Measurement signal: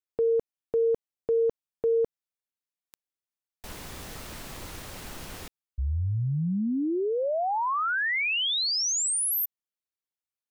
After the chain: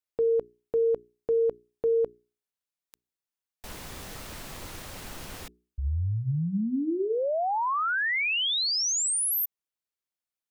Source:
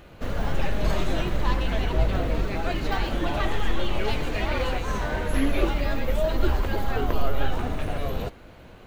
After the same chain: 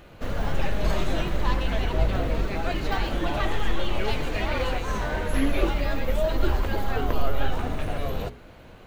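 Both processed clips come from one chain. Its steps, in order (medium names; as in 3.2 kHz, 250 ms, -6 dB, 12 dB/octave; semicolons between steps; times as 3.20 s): hum notches 60/120/180/240/300/360/420 Hz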